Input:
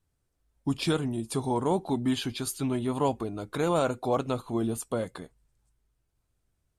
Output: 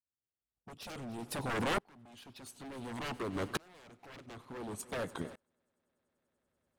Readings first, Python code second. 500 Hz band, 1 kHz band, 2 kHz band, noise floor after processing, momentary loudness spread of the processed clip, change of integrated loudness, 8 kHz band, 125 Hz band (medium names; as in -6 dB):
-12.5 dB, -9.5 dB, -1.0 dB, under -85 dBFS, 20 LU, -10.0 dB, -9.5 dB, -12.5 dB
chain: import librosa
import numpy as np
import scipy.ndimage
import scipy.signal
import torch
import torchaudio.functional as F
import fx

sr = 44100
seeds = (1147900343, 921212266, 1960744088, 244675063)

p1 = scipy.signal.sosfilt(scipy.signal.butter(2, 89.0, 'highpass', fs=sr, output='sos'), x)
p2 = fx.high_shelf(p1, sr, hz=3400.0, db=-5.5)
p3 = fx.hpss(p2, sr, part='harmonic', gain_db=-4)
p4 = fx.level_steps(p3, sr, step_db=20)
p5 = p3 + F.gain(torch.from_numpy(p4), 2.0).numpy()
p6 = 10.0 ** (-28.0 / 20.0) * (np.abs((p5 / 10.0 ** (-28.0 / 20.0) + 3.0) % 4.0 - 2.0) - 1.0)
p7 = fx.wow_flutter(p6, sr, seeds[0], rate_hz=2.1, depth_cents=140.0)
p8 = p7 + fx.echo_heads(p7, sr, ms=97, heads='first and third', feedback_pct=66, wet_db=-22.5, dry=0)
p9 = fx.tremolo_decay(p8, sr, direction='swelling', hz=0.56, depth_db=31)
y = F.gain(torch.from_numpy(p9), 3.0).numpy()